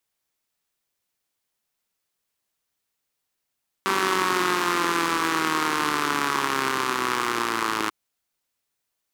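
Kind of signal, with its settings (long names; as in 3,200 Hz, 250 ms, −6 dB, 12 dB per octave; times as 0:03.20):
pulse-train model of a four-cylinder engine, changing speed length 4.04 s, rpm 5,800, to 3,200, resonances 350/1,100 Hz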